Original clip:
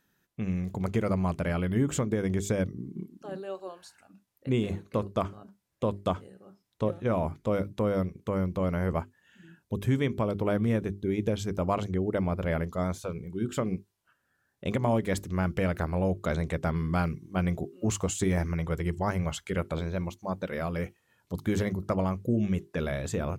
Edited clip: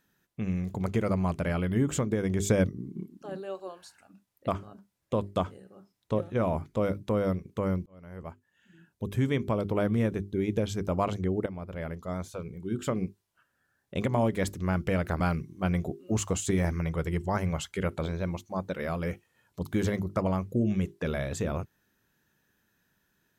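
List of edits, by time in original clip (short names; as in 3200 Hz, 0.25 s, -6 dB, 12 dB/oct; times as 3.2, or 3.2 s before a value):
2.4–2.69 gain +4 dB
4.48–5.18 cut
8.56–10.09 fade in
12.16–13.65 fade in, from -12 dB
15.9–16.93 cut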